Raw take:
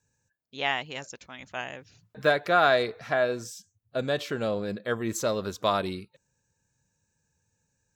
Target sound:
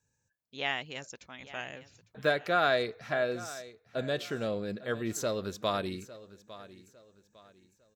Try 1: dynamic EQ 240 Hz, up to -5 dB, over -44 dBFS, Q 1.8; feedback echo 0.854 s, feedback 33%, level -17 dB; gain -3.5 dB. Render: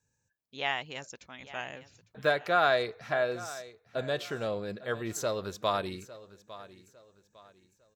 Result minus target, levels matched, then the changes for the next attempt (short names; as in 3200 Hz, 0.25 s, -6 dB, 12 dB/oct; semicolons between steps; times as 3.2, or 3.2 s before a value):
250 Hz band -4.0 dB
change: dynamic EQ 930 Hz, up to -5 dB, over -44 dBFS, Q 1.8